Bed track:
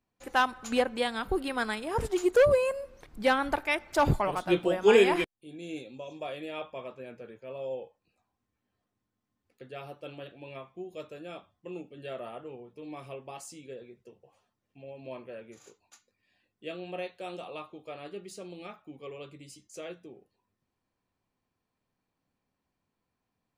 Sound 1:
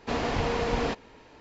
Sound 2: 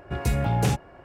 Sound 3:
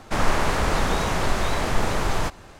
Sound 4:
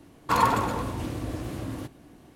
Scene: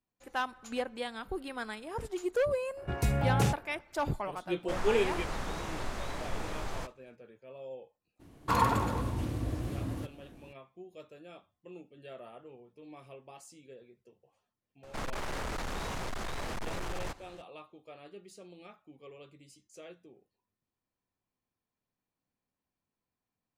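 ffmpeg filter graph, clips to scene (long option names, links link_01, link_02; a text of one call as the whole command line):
ffmpeg -i bed.wav -i cue0.wav -i cue1.wav -i cue2.wav -i cue3.wav -filter_complex "[3:a]asplit=2[link_01][link_02];[0:a]volume=-8dB[link_03];[link_01]agate=range=-33dB:threshold=-36dB:ratio=3:release=100:detection=peak[link_04];[4:a]lowshelf=frequency=150:gain=8[link_05];[link_02]asoftclip=type=hard:threshold=-23dB[link_06];[2:a]atrim=end=1.04,asetpts=PTS-STARTPTS,volume=-4.5dB,afade=type=in:duration=0.004:curve=hsin,afade=type=out:start_time=1.036:duration=0.004:curve=hsin,adelay=2770[link_07];[link_04]atrim=end=2.59,asetpts=PTS-STARTPTS,volume=-14.5dB,afade=type=in:duration=0.004:curve=hsin,afade=type=out:start_time=2.586:duration=0.004:curve=hsin,adelay=201537S[link_08];[link_05]atrim=end=2.35,asetpts=PTS-STARTPTS,volume=-5.5dB,afade=type=in:duration=0.02,afade=type=out:start_time=2.33:duration=0.02,adelay=8190[link_09];[link_06]atrim=end=2.59,asetpts=PTS-STARTPTS,volume=-10.5dB,afade=type=in:duration=0.004:curve=hsin,afade=type=out:start_time=2.586:duration=0.004:curve=hsin,adelay=14830[link_10];[link_03][link_07][link_08][link_09][link_10]amix=inputs=5:normalize=0" out.wav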